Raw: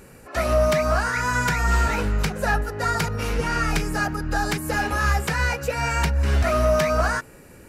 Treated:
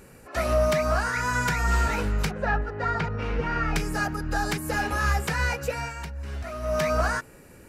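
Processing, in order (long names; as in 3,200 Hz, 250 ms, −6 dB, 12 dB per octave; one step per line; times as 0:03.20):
0:02.31–0:03.76: low-pass filter 2,700 Hz 12 dB per octave
0:05.69–0:06.86: duck −11 dB, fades 0.25 s
level −3 dB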